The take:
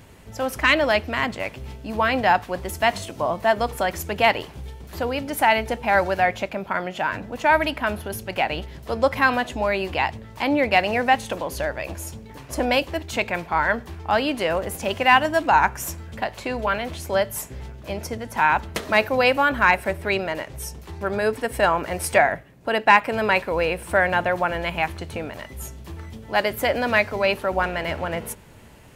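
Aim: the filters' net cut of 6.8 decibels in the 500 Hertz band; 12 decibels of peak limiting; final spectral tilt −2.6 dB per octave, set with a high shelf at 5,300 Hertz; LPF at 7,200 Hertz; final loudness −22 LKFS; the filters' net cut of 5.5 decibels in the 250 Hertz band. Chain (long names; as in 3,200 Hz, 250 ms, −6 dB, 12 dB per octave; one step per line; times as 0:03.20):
low-pass filter 7,200 Hz
parametric band 250 Hz −4.5 dB
parametric band 500 Hz −8 dB
high-shelf EQ 5,300 Hz −6 dB
level +7 dB
brickwall limiter −8.5 dBFS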